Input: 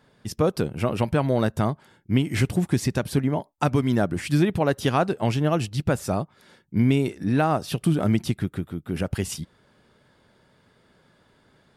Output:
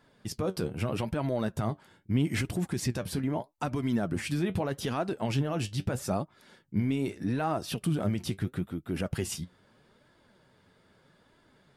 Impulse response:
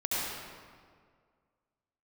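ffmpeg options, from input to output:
-af "alimiter=limit=-17dB:level=0:latency=1:release=33,flanger=delay=2.9:depth=8.3:regen=58:speed=0.79:shape=sinusoidal,volume=1dB"

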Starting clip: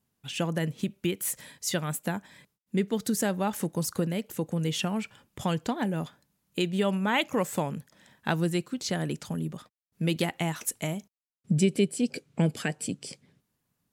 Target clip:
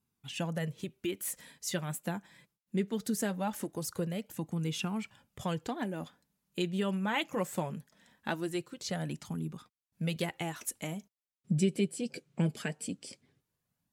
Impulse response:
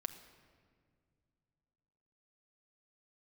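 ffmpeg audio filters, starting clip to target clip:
-af "flanger=delay=0.8:depth=5.1:regen=-40:speed=0.21:shape=sinusoidal,volume=-2dB"

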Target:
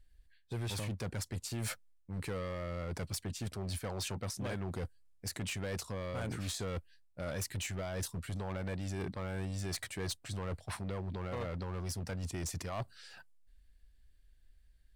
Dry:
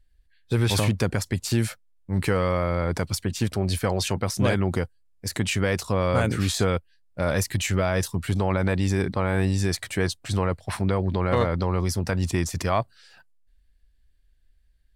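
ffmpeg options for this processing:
ffmpeg -i in.wav -af "equalizer=frequency=8500:width=1.5:gain=2,areverse,acompressor=threshold=-32dB:ratio=10,areverse,asoftclip=type=hard:threshold=-32.5dB,volume=-1dB" out.wav

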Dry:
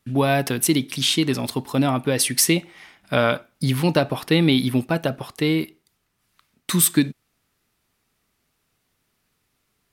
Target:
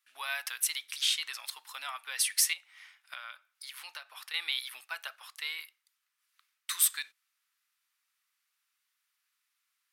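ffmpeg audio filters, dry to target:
ffmpeg -i in.wav -filter_complex "[0:a]highpass=frequency=1200:width=0.5412,highpass=frequency=1200:width=1.3066,asettb=1/sr,asplit=3[link_01][link_02][link_03];[link_01]atrim=end=2.534[link_04];[link_02]atrim=start=2.53:end=4.34,asetpts=PTS-STARTPTS,afade=type=in:duration=0.004:curve=qsin,afade=type=out:start_time=1.806:duration=0.004:curve=qsin,acompressor=threshold=-35dB:ratio=4[link_05];[link_03]atrim=start=4.336[link_06];[link_04][link_05]acrossfade=duration=0.004:curve1=hsin:curve2=qsin[link_07];[link_07][link_06]acrossfade=duration=0.004:curve1=qsin:curve2=hsin,volume=-7.5dB" out.wav

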